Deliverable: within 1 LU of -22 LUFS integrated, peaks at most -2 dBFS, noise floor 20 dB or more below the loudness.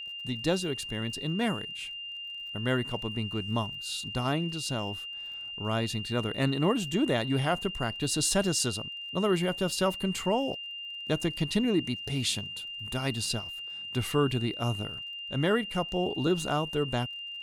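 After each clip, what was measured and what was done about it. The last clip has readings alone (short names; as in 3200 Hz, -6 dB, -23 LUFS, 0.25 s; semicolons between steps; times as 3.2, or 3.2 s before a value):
ticks 36/s; steady tone 2800 Hz; tone level -37 dBFS; loudness -30.0 LUFS; peak -12.5 dBFS; loudness target -22.0 LUFS
-> de-click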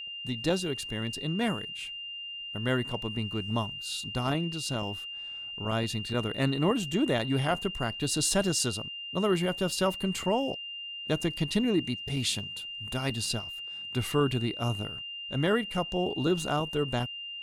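ticks 0.057/s; steady tone 2800 Hz; tone level -37 dBFS
-> notch 2800 Hz, Q 30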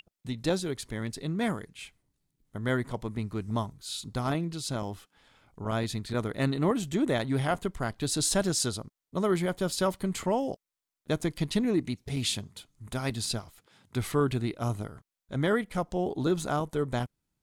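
steady tone none; loudness -30.5 LUFS; peak -13.0 dBFS; loudness target -22.0 LUFS
-> gain +8.5 dB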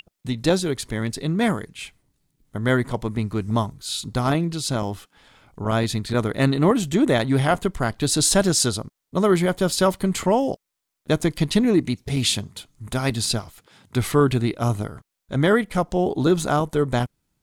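loudness -22.0 LUFS; peak -4.5 dBFS; noise floor -81 dBFS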